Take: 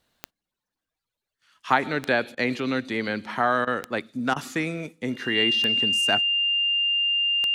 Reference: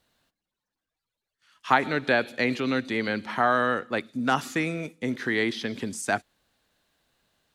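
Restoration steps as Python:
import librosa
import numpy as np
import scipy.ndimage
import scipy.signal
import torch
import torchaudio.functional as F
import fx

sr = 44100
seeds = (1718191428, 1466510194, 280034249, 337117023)

y = fx.fix_declick_ar(x, sr, threshold=10.0)
y = fx.notch(y, sr, hz=2800.0, q=30.0)
y = fx.fix_interpolate(y, sr, at_s=(2.35, 3.65, 4.34), length_ms=20.0)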